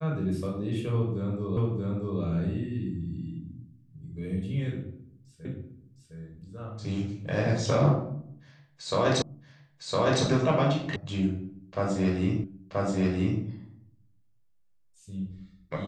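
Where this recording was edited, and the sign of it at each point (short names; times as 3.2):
1.57 repeat of the last 0.63 s
5.45 repeat of the last 0.71 s
9.22 repeat of the last 1.01 s
10.96 sound cut off
12.44 repeat of the last 0.98 s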